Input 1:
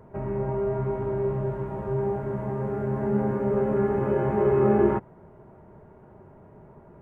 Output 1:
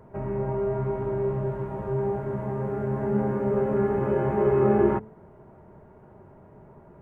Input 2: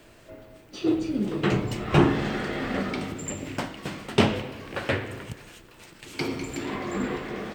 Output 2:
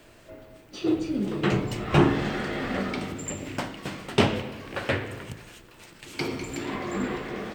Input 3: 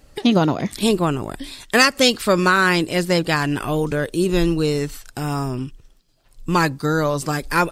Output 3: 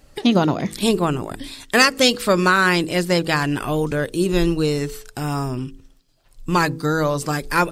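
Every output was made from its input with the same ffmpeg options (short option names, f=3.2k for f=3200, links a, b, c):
-af "bandreject=f=54.13:t=h:w=4,bandreject=f=108.26:t=h:w=4,bandreject=f=162.39:t=h:w=4,bandreject=f=216.52:t=h:w=4,bandreject=f=270.65:t=h:w=4,bandreject=f=324.78:t=h:w=4,bandreject=f=378.91:t=h:w=4,bandreject=f=433.04:t=h:w=4,bandreject=f=487.17:t=h:w=4"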